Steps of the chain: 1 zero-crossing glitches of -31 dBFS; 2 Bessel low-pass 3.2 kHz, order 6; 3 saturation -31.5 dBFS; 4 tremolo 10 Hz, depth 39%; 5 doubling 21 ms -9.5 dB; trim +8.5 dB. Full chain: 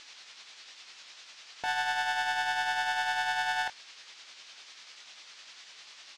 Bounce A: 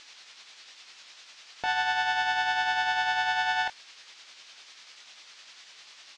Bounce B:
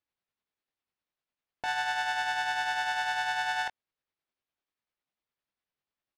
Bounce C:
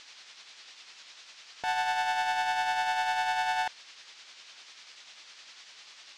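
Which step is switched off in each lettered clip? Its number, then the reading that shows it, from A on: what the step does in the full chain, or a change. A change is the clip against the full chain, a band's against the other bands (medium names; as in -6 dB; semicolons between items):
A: 3, distortion -14 dB; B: 1, distortion -3 dB; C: 5, 1 kHz band +4.0 dB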